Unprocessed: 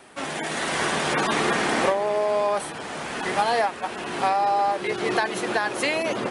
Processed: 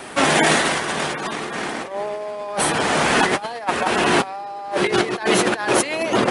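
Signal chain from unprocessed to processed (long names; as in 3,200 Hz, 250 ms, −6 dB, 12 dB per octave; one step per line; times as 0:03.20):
compressor whose output falls as the input rises −29 dBFS, ratio −0.5
level +9 dB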